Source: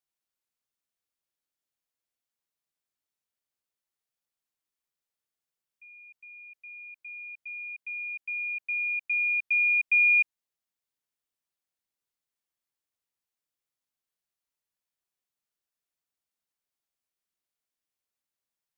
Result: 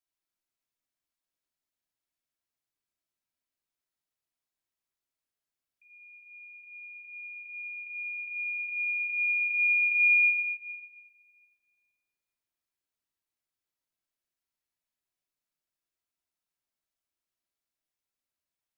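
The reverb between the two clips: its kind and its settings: shoebox room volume 3900 m³, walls mixed, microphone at 2.9 m; gain -5 dB

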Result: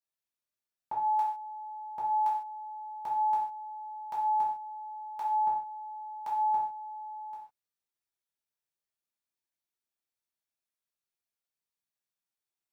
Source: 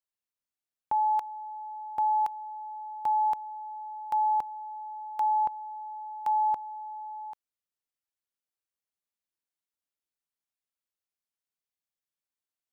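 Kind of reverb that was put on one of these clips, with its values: non-linear reverb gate 0.18 s falling, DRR -6.5 dB; gain -8 dB

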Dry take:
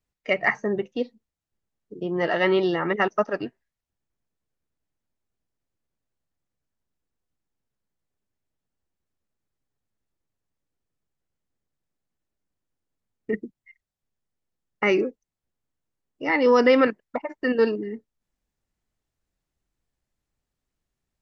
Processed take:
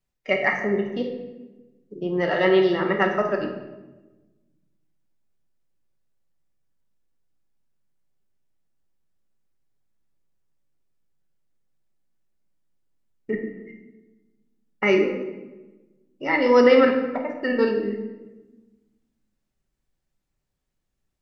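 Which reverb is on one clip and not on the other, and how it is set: shoebox room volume 650 m³, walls mixed, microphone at 1.1 m; gain -1 dB

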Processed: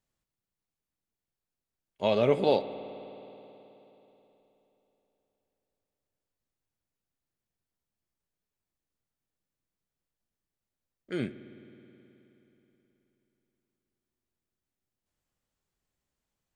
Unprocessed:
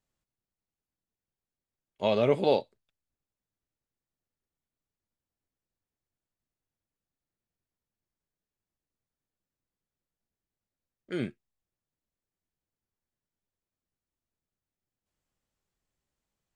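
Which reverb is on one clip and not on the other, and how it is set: spring tank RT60 3.6 s, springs 53 ms, chirp 25 ms, DRR 12.5 dB

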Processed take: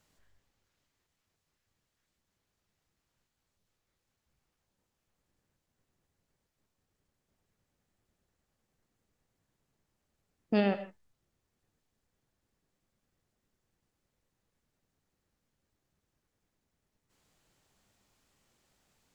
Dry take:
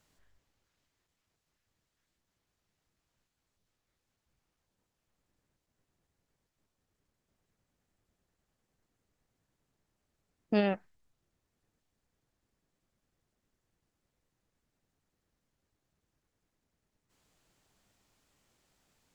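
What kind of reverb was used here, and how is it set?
non-linear reverb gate 0.18 s flat, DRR 10.5 dB

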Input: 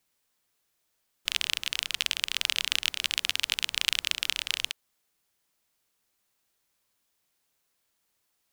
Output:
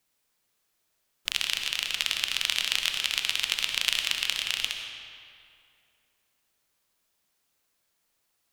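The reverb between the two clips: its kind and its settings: digital reverb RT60 2.5 s, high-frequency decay 0.7×, pre-delay 40 ms, DRR 3.5 dB

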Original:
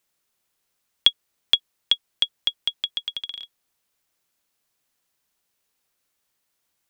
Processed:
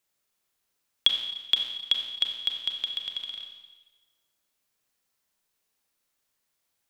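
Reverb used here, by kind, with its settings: Schroeder reverb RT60 1.2 s, combs from 29 ms, DRR 3 dB; gain -4.5 dB

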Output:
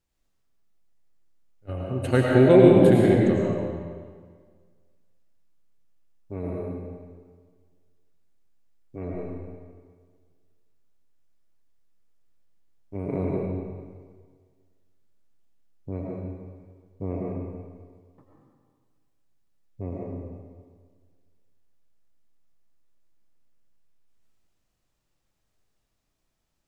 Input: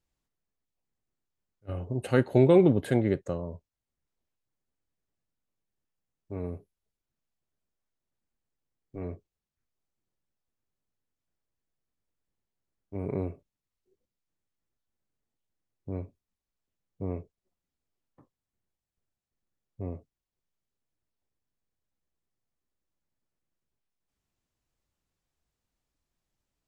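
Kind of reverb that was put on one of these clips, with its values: digital reverb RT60 1.7 s, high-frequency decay 0.85×, pre-delay 65 ms, DRR -3.5 dB; gain +2 dB

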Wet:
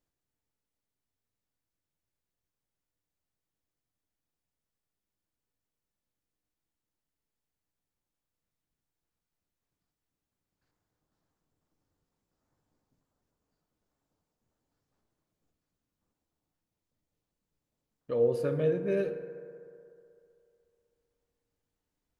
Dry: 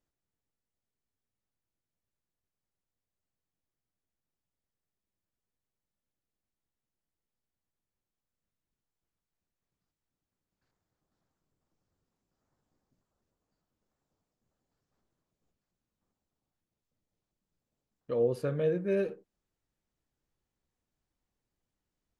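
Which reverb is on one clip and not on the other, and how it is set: FDN reverb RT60 2.7 s, low-frequency decay 0.75×, high-frequency decay 0.3×, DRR 7.5 dB

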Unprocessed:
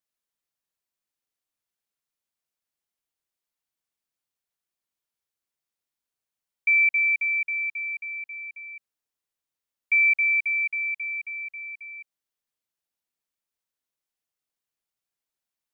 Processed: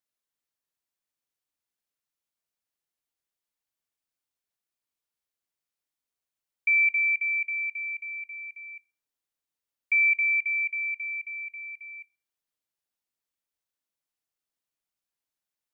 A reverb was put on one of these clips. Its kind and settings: FDN reverb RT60 0.37 s, high-frequency decay 0.95×, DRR 16 dB; gain -2 dB

